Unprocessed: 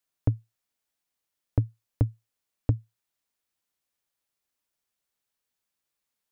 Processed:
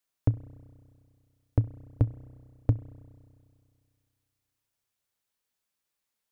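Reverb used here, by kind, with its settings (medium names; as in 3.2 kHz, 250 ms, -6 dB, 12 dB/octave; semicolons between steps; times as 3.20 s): spring tank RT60 2.2 s, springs 32 ms, chirp 75 ms, DRR 15 dB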